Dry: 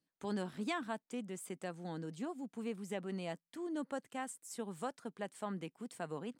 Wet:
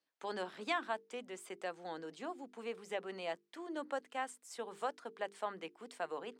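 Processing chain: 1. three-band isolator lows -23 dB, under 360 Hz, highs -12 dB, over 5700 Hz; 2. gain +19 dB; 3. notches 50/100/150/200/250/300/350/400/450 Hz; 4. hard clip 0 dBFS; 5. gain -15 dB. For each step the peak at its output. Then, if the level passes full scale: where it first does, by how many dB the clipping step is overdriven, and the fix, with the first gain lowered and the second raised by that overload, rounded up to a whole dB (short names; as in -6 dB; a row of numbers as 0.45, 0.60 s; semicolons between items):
-25.0, -6.0, -6.0, -6.0, -21.0 dBFS; no overload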